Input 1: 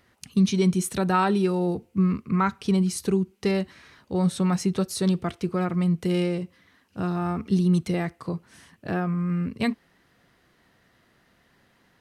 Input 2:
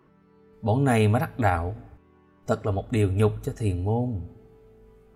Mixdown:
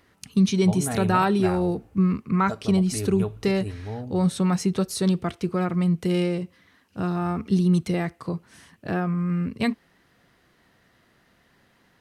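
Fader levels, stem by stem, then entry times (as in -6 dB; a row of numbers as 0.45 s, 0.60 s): +1.0 dB, -8.5 dB; 0.00 s, 0.00 s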